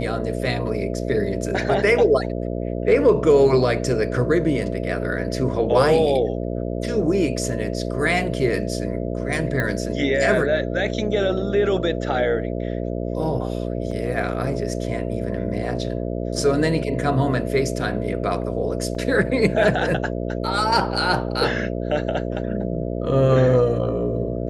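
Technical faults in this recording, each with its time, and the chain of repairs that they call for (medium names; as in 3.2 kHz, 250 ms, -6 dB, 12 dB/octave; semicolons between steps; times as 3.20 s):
buzz 60 Hz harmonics 11 -26 dBFS
9.60 s: pop -12 dBFS
13.91 s: dropout 4.1 ms
18.95 s: dropout 3.2 ms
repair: de-click; de-hum 60 Hz, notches 11; interpolate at 13.91 s, 4.1 ms; interpolate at 18.95 s, 3.2 ms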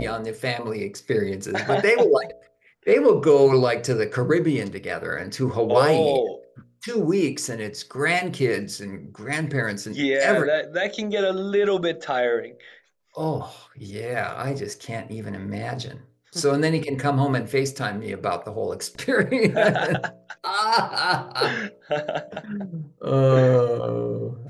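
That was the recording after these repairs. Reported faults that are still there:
nothing left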